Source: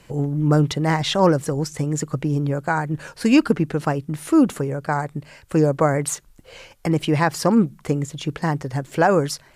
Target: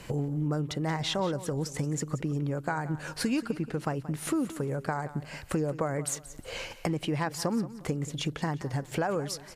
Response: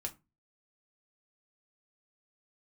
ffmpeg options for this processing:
-filter_complex "[0:a]acompressor=threshold=-35dB:ratio=4,asplit=2[a][b];[b]aecho=0:1:178|356|534:0.168|0.0554|0.0183[c];[a][c]amix=inputs=2:normalize=0,volume=4.5dB"

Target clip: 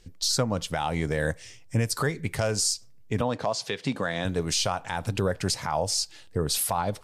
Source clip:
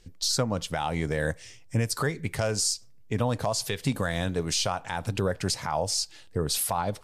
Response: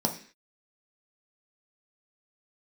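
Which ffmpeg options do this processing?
-filter_complex "[0:a]asettb=1/sr,asplit=3[a][b][c];[a]atrim=end=3.214[d];[b]atrim=start=3.21:end=4.25,asetpts=PTS-STARTPTS,afade=t=in:d=0.004:c=qsin,afade=t=out:st=1.036:d=0.004:c=qsin,highpass=180,lowpass=5.3k[e];[c]atrim=start=4.246[f];[d][e]acrossfade=d=0.004:c1=hsin:c2=qsin[g];[g][f]acrossfade=d=0.004:c1=qsin:c2=hsin,volume=1dB"

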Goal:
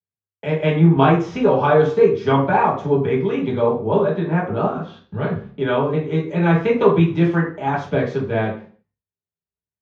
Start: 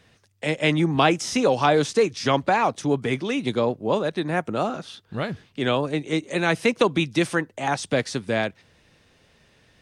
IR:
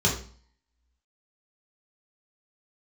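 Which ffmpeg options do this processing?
-filter_complex "[0:a]agate=range=-46dB:threshold=-47dB:ratio=16:detection=peak,lowpass=1.5k,lowshelf=f=410:g=-8.5[a];[1:a]atrim=start_sample=2205,afade=t=out:st=0.4:d=0.01,atrim=end_sample=18081[b];[a][b]afir=irnorm=-1:irlink=0,volume=-6.5dB"

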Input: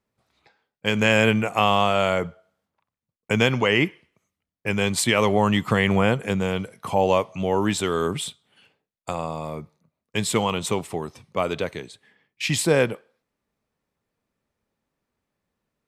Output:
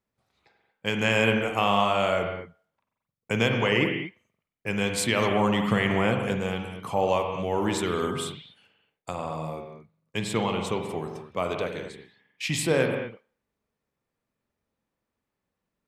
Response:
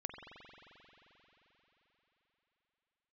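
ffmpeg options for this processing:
-filter_complex "[0:a]asettb=1/sr,asplit=3[a][b][c];[a]atrim=end=10.194[d];[b]atrim=start=10.19:end=10.89,asetpts=PTS-STARTPTS,afade=t=in:d=0.004:c=qsin,afade=t=out:st=0.696:d=0.004:c=qsin,highshelf=f=7k:g=-10[e];[c]atrim=start=10.886[f];[d][e]acrossfade=d=0.004:c1=hsin:c2=qsin[g];[g][f]acrossfade=d=0.004:c1=qsin:c2=hsin[h];[1:a]atrim=start_sample=2205,afade=t=out:st=0.3:d=0.01,atrim=end_sample=13671[i];[h][i]afir=irnorm=-1:irlink=0,volume=-1dB"

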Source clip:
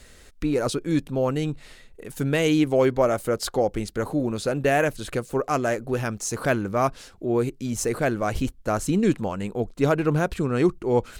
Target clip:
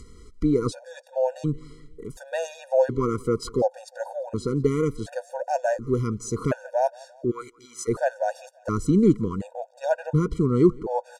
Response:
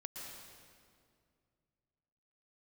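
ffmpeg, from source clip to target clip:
-filter_complex "[0:a]lowpass=6.5k,equalizer=f=2.6k:t=o:w=1.4:g=-14,acompressor=mode=upward:threshold=-44dB:ratio=2.5,asplit=3[a][b][c];[a]afade=t=out:st=7.3:d=0.02[d];[b]highpass=f=1.5k:t=q:w=2.9,afade=t=in:st=7.3:d=0.02,afade=t=out:st=7.87:d=0.02[e];[c]afade=t=in:st=7.87:d=0.02[f];[d][e][f]amix=inputs=3:normalize=0,aecho=1:1:172|344|516:0.0631|0.0309|0.0151,afftfilt=real='re*gt(sin(2*PI*0.69*pts/sr)*(1-2*mod(floor(b*sr/1024/480),2)),0)':imag='im*gt(sin(2*PI*0.69*pts/sr)*(1-2*mod(floor(b*sr/1024/480),2)),0)':win_size=1024:overlap=0.75,volume=3.5dB"

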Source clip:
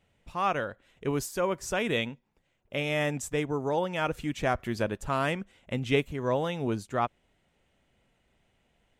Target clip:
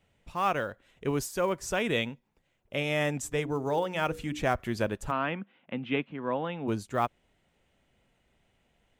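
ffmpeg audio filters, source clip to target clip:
-filter_complex "[0:a]asplit=3[a][b][c];[a]afade=t=out:st=3.23:d=0.02[d];[b]bandreject=f=60:t=h:w=6,bandreject=f=120:t=h:w=6,bandreject=f=180:t=h:w=6,bandreject=f=240:t=h:w=6,bandreject=f=300:t=h:w=6,bandreject=f=360:t=h:w=6,bandreject=f=420:t=h:w=6,bandreject=f=480:t=h:w=6,afade=t=in:st=3.23:d=0.02,afade=t=out:st=4.41:d=0.02[e];[c]afade=t=in:st=4.41:d=0.02[f];[d][e][f]amix=inputs=3:normalize=0,acrossover=split=870|1800[g][h][i];[h]acrusher=bits=5:mode=log:mix=0:aa=0.000001[j];[g][j][i]amix=inputs=3:normalize=0,asplit=3[k][l][m];[k]afade=t=out:st=5.1:d=0.02[n];[l]highpass=f=170:w=0.5412,highpass=f=170:w=1.3066,equalizer=f=410:t=q:w=4:g=-7,equalizer=f=610:t=q:w=4:g=-5,equalizer=f=2k:t=q:w=4:g=-4,lowpass=f=2.9k:w=0.5412,lowpass=f=2.9k:w=1.3066,afade=t=in:st=5.1:d=0.02,afade=t=out:st=6.67:d=0.02[o];[m]afade=t=in:st=6.67:d=0.02[p];[n][o][p]amix=inputs=3:normalize=0"

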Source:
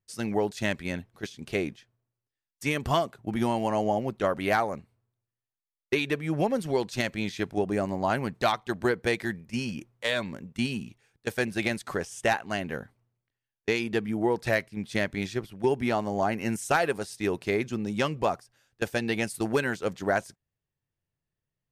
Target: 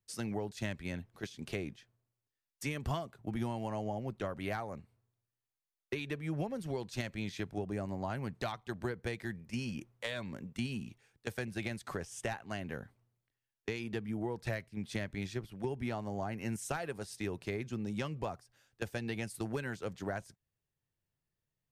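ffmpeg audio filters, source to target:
-filter_complex "[0:a]acrossover=split=140[a][b];[b]acompressor=threshold=-37dB:ratio=3[c];[a][c]amix=inputs=2:normalize=0,volume=-2dB"

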